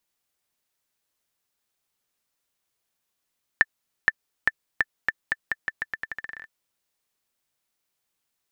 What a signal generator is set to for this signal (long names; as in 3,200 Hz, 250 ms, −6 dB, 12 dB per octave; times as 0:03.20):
bouncing ball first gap 0.47 s, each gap 0.84, 1,770 Hz, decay 37 ms −3.5 dBFS